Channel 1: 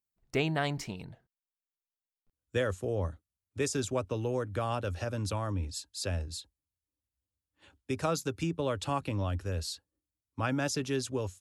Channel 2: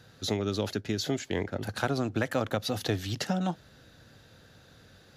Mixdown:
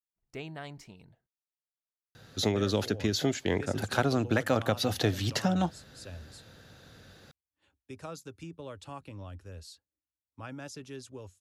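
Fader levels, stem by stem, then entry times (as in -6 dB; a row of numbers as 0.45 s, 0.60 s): -11.5 dB, +2.0 dB; 0.00 s, 2.15 s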